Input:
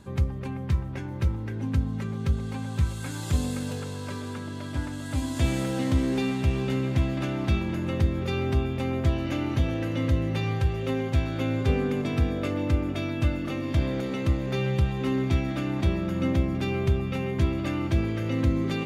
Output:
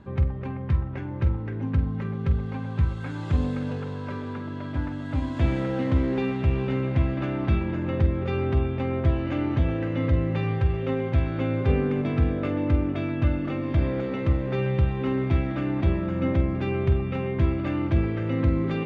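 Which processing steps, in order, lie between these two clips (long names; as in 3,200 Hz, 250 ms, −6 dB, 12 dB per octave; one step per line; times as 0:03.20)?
low-pass filter 2,300 Hz 12 dB per octave
on a send: flutter between parallel walls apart 8.2 metres, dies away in 0.25 s
on the sum: level +1.5 dB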